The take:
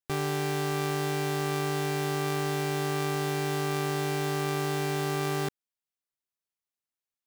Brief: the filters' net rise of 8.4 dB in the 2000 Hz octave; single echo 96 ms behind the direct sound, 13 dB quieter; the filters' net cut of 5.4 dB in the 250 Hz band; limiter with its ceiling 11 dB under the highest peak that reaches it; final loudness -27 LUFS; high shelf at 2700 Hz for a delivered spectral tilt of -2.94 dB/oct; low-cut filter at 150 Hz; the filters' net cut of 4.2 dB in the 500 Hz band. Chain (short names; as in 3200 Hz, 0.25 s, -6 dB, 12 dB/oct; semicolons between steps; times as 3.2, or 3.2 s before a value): HPF 150 Hz; bell 250 Hz -6 dB; bell 500 Hz -3.5 dB; bell 2000 Hz +8 dB; high shelf 2700 Hz +7 dB; limiter -20.5 dBFS; echo 96 ms -13 dB; gain +6 dB